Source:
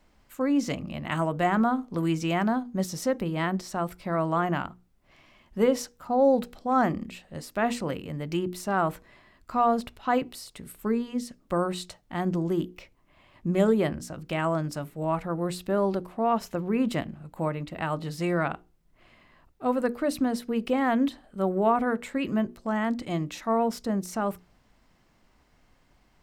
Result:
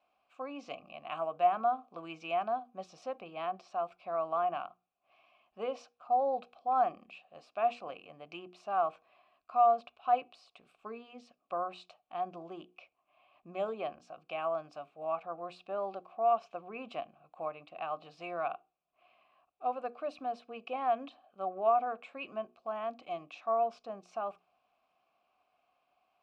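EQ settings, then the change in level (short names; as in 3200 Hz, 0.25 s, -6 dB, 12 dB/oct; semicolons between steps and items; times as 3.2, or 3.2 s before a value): vowel filter a; LPF 5000 Hz 12 dB/oct; high shelf 2000 Hz +10 dB; 0.0 dB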